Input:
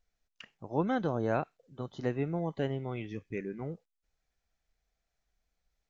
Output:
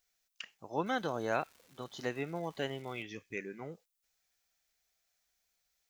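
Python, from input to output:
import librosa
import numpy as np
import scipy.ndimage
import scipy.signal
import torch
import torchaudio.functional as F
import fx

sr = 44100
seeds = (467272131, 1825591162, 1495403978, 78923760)

y = fx.tilt_eq(x, sr, slope=3.5)
y = fx.dmg_crackle(y, sr, seeds[0], per_s=570.0, level_db=-50.0, at=(0.84, 3.02), fade=0.02)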